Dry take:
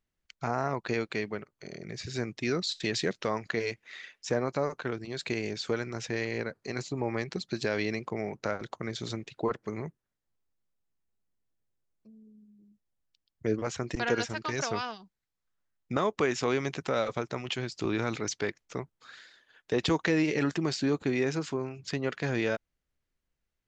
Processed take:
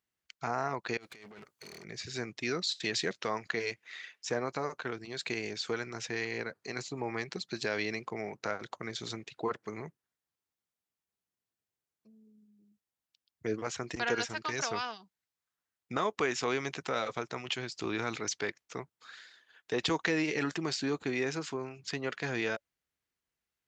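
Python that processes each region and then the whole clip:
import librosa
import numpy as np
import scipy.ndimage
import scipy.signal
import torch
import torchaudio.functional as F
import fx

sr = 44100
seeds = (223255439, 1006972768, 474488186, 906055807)

y = fx.chain(x, sr, fx.high_shelf(hz=3700.0, db=7.0),
    fx.over_compress(threshold_db=-38.0, ratio=-0.5),
    fx.tube_stage(drive_db=42.0, bias=0.4), at=(0.97, 1.84))
y = scipy.signal.sosfilt(scipy.signal.butter(2, 71.0, 'highpass', fs=sr, output='sos'), y)
y = fx.low_shelf(y, sr, hz=430.0, db=-8.0)
y = fx.notch(y, sr, hz=570.0, q=12.0)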